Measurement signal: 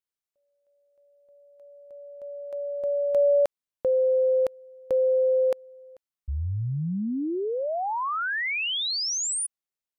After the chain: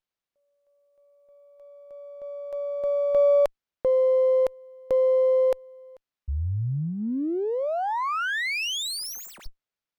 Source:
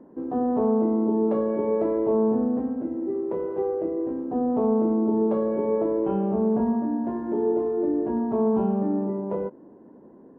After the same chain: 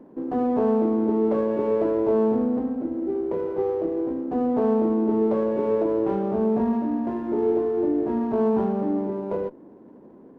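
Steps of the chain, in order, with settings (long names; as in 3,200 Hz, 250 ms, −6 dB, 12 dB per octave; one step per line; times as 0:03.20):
dynamic equaliser 190 Hz, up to −5 dB, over −41 dBFS, Q 5.3
windowed peak hold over 5 samples
level +1.5 dB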